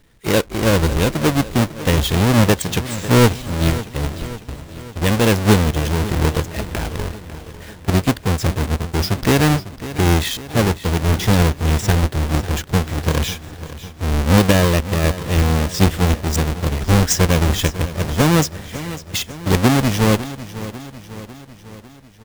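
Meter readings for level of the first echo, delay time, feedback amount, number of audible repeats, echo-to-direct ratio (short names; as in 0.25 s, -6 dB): -14.5 dB, 0.549 s, 57%, 5, -13.0 dB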